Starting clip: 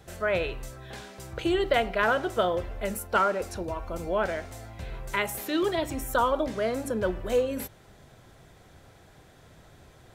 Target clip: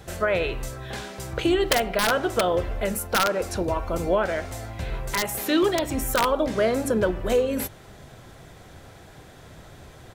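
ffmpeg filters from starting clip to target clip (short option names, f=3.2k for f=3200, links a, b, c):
-filter_complex "[0:a]aeval=exprs='(mod(5.31*val(0)+1,2)-1)/5.31':c=same,asplit=2[a][b];[b]asetrate=37084,aresample=44100,atempo=1.18921,volume=-15dB[c];[a][c]amix=inputs=2:normalize=0,alimiter=limit=-20dB:level=0:latency=1:release=277,volume=7.5dB"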